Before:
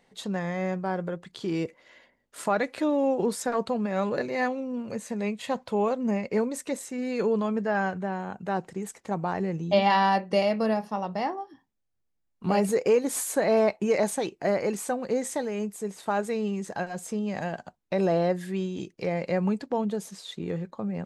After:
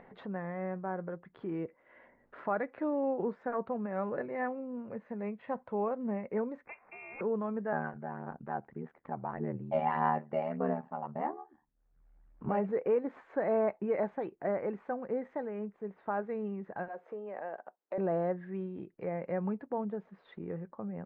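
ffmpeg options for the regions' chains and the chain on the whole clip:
ffmpeg -i in.wav -filter_complex "[0:a]asettb=1/sr,asplit=3[link_01][link_02][link_03];[link_01]atrim=end=6.654[link_04];[link_02]atrim=start=6.65:end=7.21,asetpts=PTS-STARTPTS,afade=type=in:duration=0.004:curve=qsin,afade=type=out:start_time=0.556:duration=0.004:curve=qsin,tiltshelf=frequency=690:gain=-3,aeval=exprs='val(0)*sin(2*PI*160*n/s)':channel_layout=same,lowpass=frequency=2400:width_type=q:width=0.5098,lowpass=frequency=2400:width_type=q:width=0.6013,lowpass=frequency=2400:width_type=q:width=0.9,lowpass=frequency=2400:width_type=q:width=2.563,afreqshift=-2800[link_05];[link_03]atrim=start=7.206[link_06];[link_04][link_05]acrossfade=duration=0.004:curve1=hsin:curve2=qsin[link_07];[link_07][link_06]acrossfade=duration=0.004:curve1=qsin:curve2=hsin,asettb=1/sr,asplit=3[link_08][link_09][link_10];[link_08]atrim=end=7.724[link_11];[link_09]atrim=start=7.72:end=12.49,asetpts=PTS-STARTPTS,afade=type=in:duration=0.004:curve=qsin,afade=type=out:start_time=4.766:duration=0.004:curve=qsin,aphaser=in_gain=1:out_gain=1:delay=1.4:decay=0.4:speed=1.7:type=sinusoidal,aeval=exprs='val(0)*sin(2*PI*38*n/s)':channel_layout=same[link_12];[link_10]atrim=start=12.486[link_13];[link_11][link_12]acrossfade=duration=0.004:curve1=hsin:curve2=qsin[link_14];[link_14][link_13]acrossfade=duration=0.004:curve1=qsin:curve2=hsin,asettb=1/sr,asplit=3[link_15][link_16][link_17];[link_15]atrim=end=16.884[link_18];[link_16]atrim=start=16.88:end=17.98,asetpts=PTS-STARTPTS,afade=type=in:duration=0.004:curve=qsin,afade=type=out:start_time=1.096:duration=0.004:curve=qsin,highpass=frequency=460:width_type=q:width=1.7,acompressor=threshold=-33dB:ratio=1.5:attack=3.2:release=140:knee=1:detection=peak[link_19];[link_17]atrim=start=17.976[link_20];[link_18][link_19]acrossfade=duration=0.004:curve1=hsin:curve2=qsin[link_21];[link_21][link_20]acrossfade=duration=0.004:curve1=qsin:curve2=hsin,lowpass=frequency=1800:width=0.5412,lowpass=frequency=1800:width=1.3066,lowshelf=frequency=200:gain=-4,acompressor=mode=upward:threshold=-36dB:ratio=2.5,volume=-6.5dB" out.wav

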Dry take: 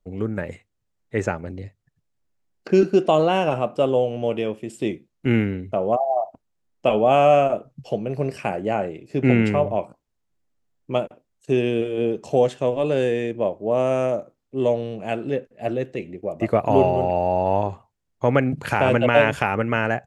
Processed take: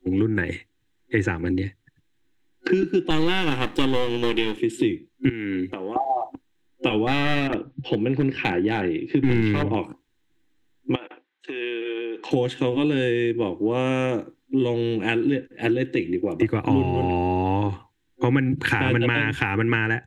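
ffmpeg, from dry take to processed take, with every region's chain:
ffmpeg -i in.wav -filter_complex "[0:a]asettb=1/sr,asplit=3[link_01][link_02][link_03];[link_01]atrim=end=3.104[link_04];[link_02]atrim=start=3.1:end=4.57,asetpts=PTS-STARTPTS,afade=type=in:duration=0.004:curve=qsin,afade=type=out:start_time=1.466:duration=0.004:curve=qsin,aeval=exprs='if(lt(val(0),0),0.251*val(0),val(0))':channel_layout=same,highshelf=frequency=3700:gain=10[link_05];[link_03]atrim=start=4.566[link_06];[link_04][link_05]acrossfade=duration=0.004:curve1=hsin:curve2=qsin[link_07];[link_07][link_06]acrossfade=duration=0.004:curve1=qsin:curve2=hsin,asettb=1/sr,asplit=3[link_08][link_09][link_10];[link_08]atrim=end=5.294[link_11];[link_09]atrim=start=5.29:end=5.96,asetpts=PTS-STARTPTS,afade=type=in:duration=0.004:curve=qsin,afade=type=out:start_time=0.666:duration=0.004:curve=qsin,highpass=frequency=310:poles=1,acompressor=threshold=-33dB:ratio=4:attack=3.2:release=140:knee=1:detection=peak[link_12];[link_10]atrim=start=5.956[link_13];[link_11][link_12]acrossfade=duration=0.004:curve1=hsin:curve2=qsin[link_14];[link_14][link_13]acrossfade=duration=0.004:curve1=qsin:curve2=hsin,asettb=1/sr,asplit=3[link_15][link_16][link_17];[link_15]atrim=end=7.074[link_18];[link_16]atrim=start=7.07:end=9.75,asetpts=PTS-STARTPTS,afade=type=in:duration=0.004:curve=qsin,afade=type=out:start_time=2.676:duration=0.004:curve=qsin,lowpass=frequency=4200:width=0.5412,lowpass=frequency=4200:width=1.3066,aeval=exprs='clip(val(0),-1,0.15)':channel_layout=same[link_19];[link_17]atrim=start=9.746[link_20];[link_18][link_19]acrossfade=duration=0.004:curve1=hsin:curve2=qsin[link_21];[link_21][link_20]acrossfade=duration=0.004:curve1=qsin:curve2=hsin,asettb=1/sr,asplit=3[link_22][link_23][link_24];[link_22]atrim=end=10.954[link_25];[link_23]atrim=start=10.95:end=12.31,asetpts=PTS-STARTPTS,afade=type=in:duration=0.004:curve=qsin,afade=type=out:start_time=1.356:duration=0.004:curve=qsin,equalizer=frequency=1600:width_type=o:width=2.5:gain=3.5,acompressor=threshold=-30dB:ratio=8:attack=3.2:release=140:knee=1:detection=peak,highpass=550,lowpass=3200[link_26];[link_24]atrim=start=12.306[link_27];[link_25][link_26]acrossfade=duration=0.004:curve1=hsin:curve2=qsin[link_28];[link_28][link_27]acrossfade=duration=0.004:curve1=qsin:curve2=hsin,superequalizer=6b=3.55:8b=0.251:11b=2.82:12b=2.24:13b=2.82,acrossover=split=120[link_29][link_30];[link_30]acompressor=threshold=-25dB:ratio=10[link_31];[link_29][link_31]amix=inputs=2:normalize=0,volume=6dB" out.wav

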